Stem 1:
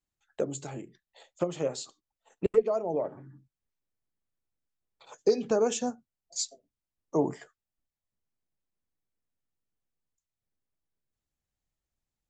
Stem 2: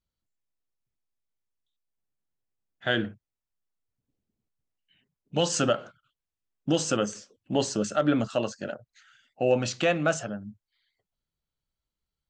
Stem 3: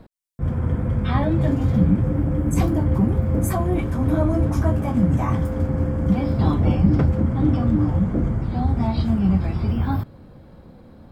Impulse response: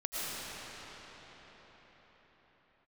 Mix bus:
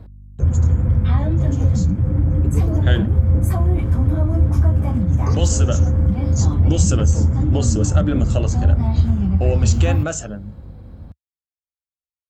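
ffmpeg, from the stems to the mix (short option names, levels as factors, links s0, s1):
-filter_complex "[0:a]alimiter=limit=0.106:level=0:latency=1,lowpass=f=6400:t=q:w=5.1,volume=0.422[s0];[1:a]lowpass=f=7300:t=q:w=4.7,equalizer=f=380:t=o:w=0.77:g=5.5,volume=1.06[s1];[2:a]acompressor=threshold=0.112:ratio=6,aeval=exprs='val(0)+0.00562*(sin(2*PI*50*n/s)+sin(2*PI*2*50*n/s)/2+sin(2*PI*3*50*n/s)/3+sin(2*PI*4*50*n/s)/4+sin(2*PI*5*50*n/s)/5)':c=same,volume=0.841[s2];[s0][s1]amix=inputs=2:normalize=0,agate=range=0.0224:threshold=0.00126:ratio=3:detection=peak,alimiter=limit=0.211:level=0:latency=1:release=274,volume=1[s3];[s2][s3]amix=inputs=2:normalize=0,equalizer=f=74:w=0.93:g=13.5"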